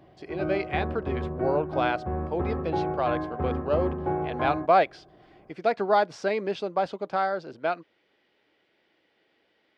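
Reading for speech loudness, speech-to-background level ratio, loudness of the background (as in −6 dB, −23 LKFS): −28.5 LKFS, 3.0 dB, −31.5 LKFS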